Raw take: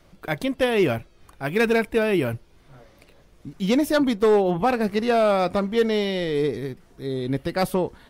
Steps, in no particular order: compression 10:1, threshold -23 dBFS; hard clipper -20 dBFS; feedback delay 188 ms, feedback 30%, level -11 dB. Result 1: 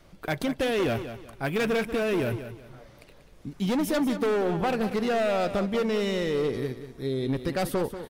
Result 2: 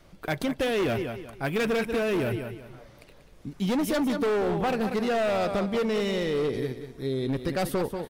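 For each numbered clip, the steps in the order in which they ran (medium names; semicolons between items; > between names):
hard clipper > compression > feedback delay; feedback delay > hard clipper > compression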